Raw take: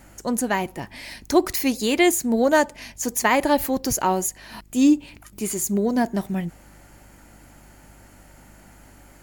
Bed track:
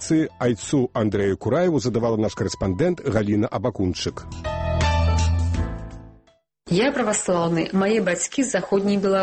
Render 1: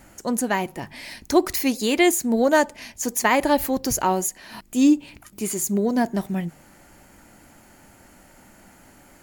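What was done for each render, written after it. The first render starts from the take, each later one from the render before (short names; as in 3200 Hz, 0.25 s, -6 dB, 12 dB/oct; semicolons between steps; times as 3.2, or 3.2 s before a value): de-hum 50 Hz, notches 3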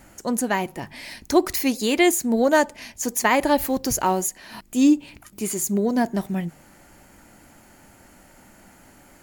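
3.6–4.42 short-mantissa float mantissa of 4-bit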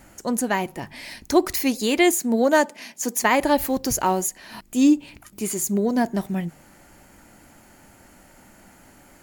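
2.18–3.22 steep high-pass 160 Hz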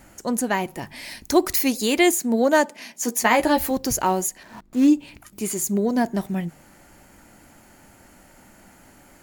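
0.7–2.11 high shelf 6200 Hz +5 dB; 2.93–3.71 doubler 13 ms -5.5 dB; 4.43–4.88 median filter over 15 samples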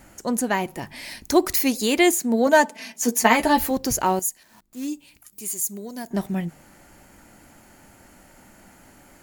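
2.46–3.64 comb 4.5 ms; 4.19–6.11 pre-emphasis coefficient 0.8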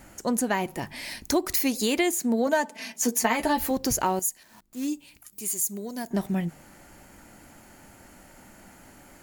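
compressor 4:1, threshold -21 dBFS, peak gain reduction 9.5 dB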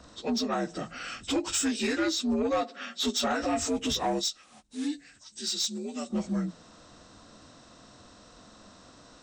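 inharmonic rescaling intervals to 82%; soft clip -21 dBFS, distortion -15 dB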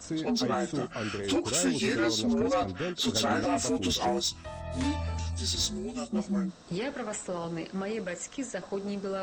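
add bed track -14 dB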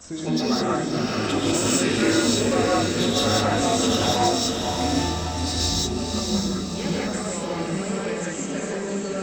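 on a send: diffused feedback echo 0.604 s, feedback 49%, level -4.5 dB; on the sum: non-linear reverb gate 0.22 s rising, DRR -5 dB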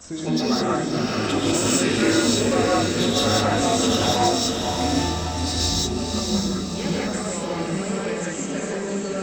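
gain +1 dB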